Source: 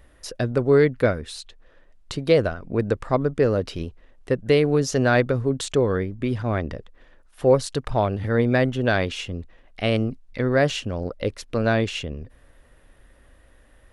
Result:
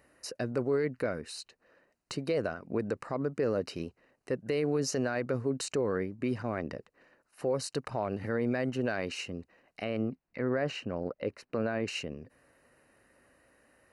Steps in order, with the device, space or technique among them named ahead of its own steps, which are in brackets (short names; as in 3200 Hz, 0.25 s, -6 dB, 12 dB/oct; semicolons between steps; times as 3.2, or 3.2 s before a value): PA system with an anti-feedback notch (HPF 160 Hz 12 dB/oct; Butterworth band-stop 3400 Hz, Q 4.3; limiter -15.5 dBFS, peak gain reduction 10.5 dB); 9.84–11.88 tone controls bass 0 dB, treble -14 dB; gain -5 dB